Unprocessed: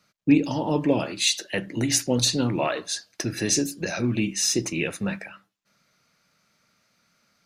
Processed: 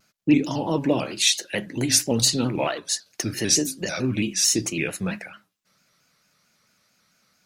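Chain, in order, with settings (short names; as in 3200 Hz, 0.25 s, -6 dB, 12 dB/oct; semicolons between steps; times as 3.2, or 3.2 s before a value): high shelf 6000 Hz +7 dB; 2.42–3.06 transient shaper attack +2 dB, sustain -5 dB; shaped vibrato square 4.5 Hz, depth 100 cents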